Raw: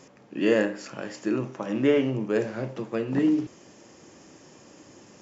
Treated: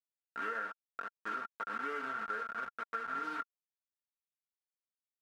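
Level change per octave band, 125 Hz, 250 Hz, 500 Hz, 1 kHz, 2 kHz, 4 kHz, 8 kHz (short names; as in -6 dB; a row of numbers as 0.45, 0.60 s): under -30 dB, -27.5 dB, -22.5 dB, +3.5 dB, -4.5 dB, -14.5 dB, n/a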